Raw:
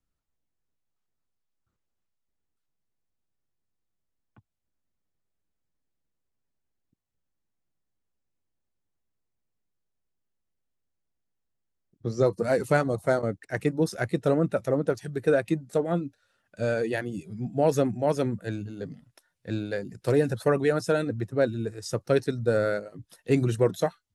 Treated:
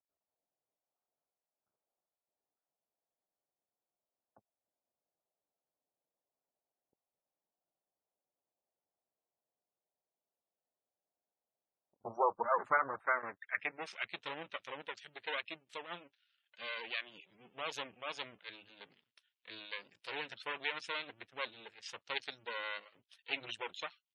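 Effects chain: half-wave rectifier; band-pass sweep 670 Hz -> 3000 Hz, 11.71–14.21; spectral gate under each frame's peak -20 dB strong; gain +5.5 dB

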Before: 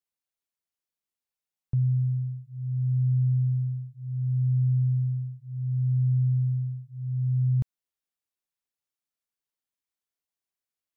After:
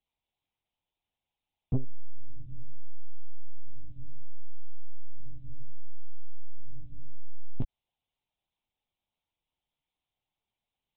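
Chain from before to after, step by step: fixed phaser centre 300 Hz, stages 8; monotone LPC vocoder at 8 kHz 290 Hz; soft clip -33 dBFS, distortion -11 dB; gain +12 dB

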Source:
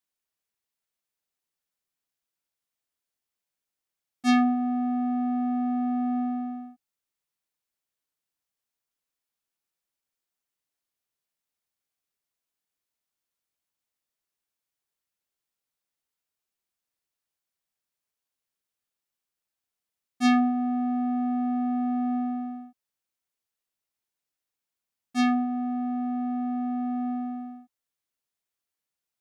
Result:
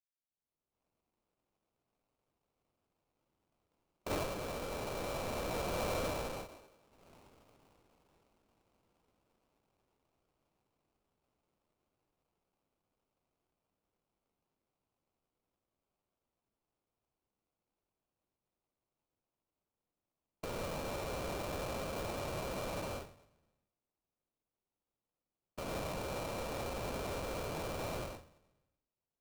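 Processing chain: Doppler pass-by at 7, 14 m/s, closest 3.5 m; recorder AGC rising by 36 dB/s; low shelf 250 Hz -7.5 dB; inverted band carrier 2600 Hz; Schroeder reverb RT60 0.98 s, combs from 27 ms, DRR 11 dB; sample-rate reducer 1800 Hz, jitter 20%; gain +8 dB

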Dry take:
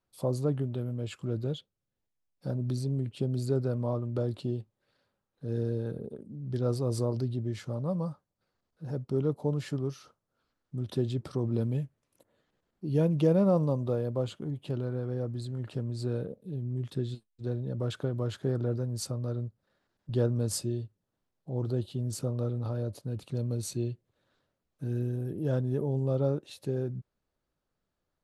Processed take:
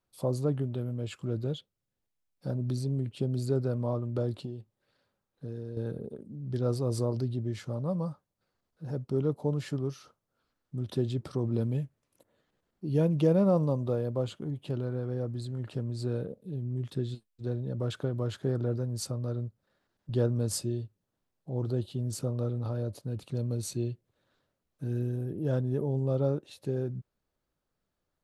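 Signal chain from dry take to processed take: 4.43–5.77 compressor 6:1, threshold -35 dBFS, peak gain reduction 9 dB; 25.25–26.65 mismatched tape noise reduction decoder only

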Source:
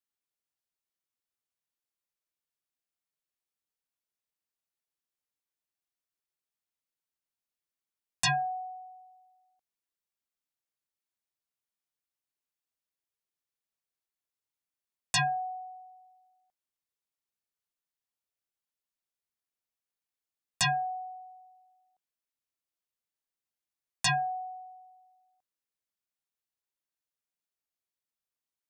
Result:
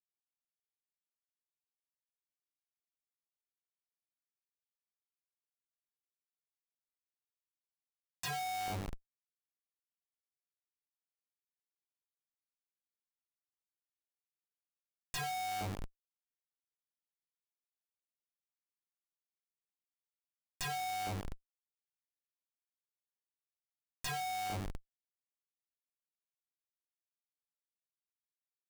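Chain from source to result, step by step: buzz 100 Hz, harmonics 24, -54 dBFS -5 dB/oct; Schmitt trigger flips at -41 dBFS; gain +3.5 dB

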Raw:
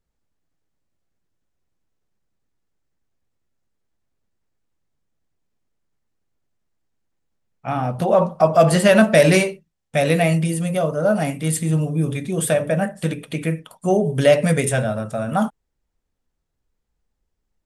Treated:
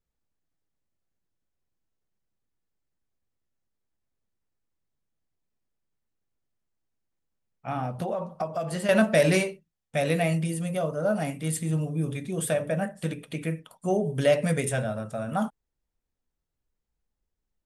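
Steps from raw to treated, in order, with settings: 7.85–8.89 compressor 12:1, threshold -19 dBFS, peak gain reduction 12 dB; gain -7.5 dB

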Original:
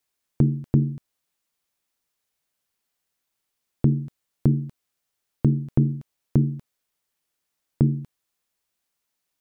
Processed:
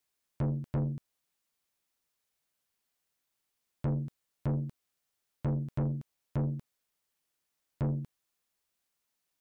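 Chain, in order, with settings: soft clip -24 dBFS, distortion -5 dB; gain -3 dB

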